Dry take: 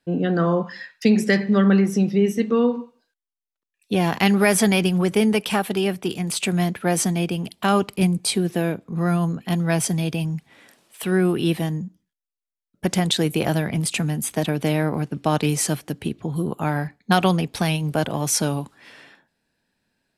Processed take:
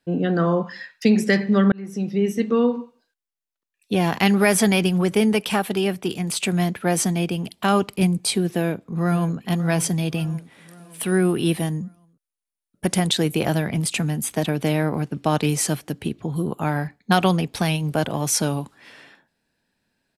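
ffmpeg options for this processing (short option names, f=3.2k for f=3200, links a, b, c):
-filter_complex "[0:a]asplit=2[a][b];[b]afade=t=in:st=8.49:d=0.01,afade=t=out:st=9.37:d=0.01,aecho=0:1:560|1120|1680|2240|2800:0.177828|0.0978054|0.053793|0.0295861|0.0162724[c];[a][c]amix=inputs=2:normalize=0,asettb=1/sr,asplit=3[d][e][f];[d]atrim=end=10.304[g];[e]atrim=start=10.3:end=13.08,asetpts=PTS-STARTPTS,afade=t=in:d=0.004:c=qsin,afade=t=out:st=2.776:d=0.004:c=qsin,equalizer=f=9.7k:w=4.8:g=11.5[h];[f]atrim=start=13.076[i];[g][h]acrossfade=d=0.004:c1=hsin:c2=qsin[j];[j][i]acrossfade=d=0.004:c1=qsin:c2=hsin,asplit=2[k][l];[k]atrim=end=1.72,asetpts=PTS-STARTPTS,afade=t=out:st=1.716:d=0.004:c=hsin[m];[l]atrim=start=1.72,asetpts=PTS-STARTPTS,afade=t=in:d=0.9:c=qsin[n];[m][n]concat=n=2:v=0:a=1"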